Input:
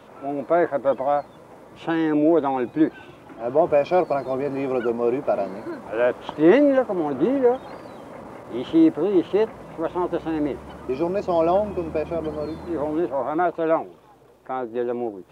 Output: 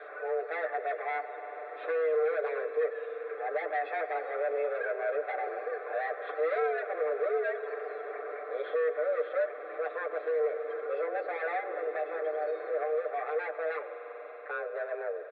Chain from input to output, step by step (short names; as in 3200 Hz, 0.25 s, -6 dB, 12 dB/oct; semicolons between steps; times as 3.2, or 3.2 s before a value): hard clip -20.5 dBFS, distortion -7 dB; sample leveller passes 1; air absorption 380 m; fixed phaser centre 2800 Hz, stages 6; comb 6.9 ms, depth 82%; reverb RT60 4.0 s, pre-delay 90 ms, DRR 10.5 dB; mistuned SSB +160 Hz 280–3500 Hz; three-band squash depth 40%; gain -3.5 dB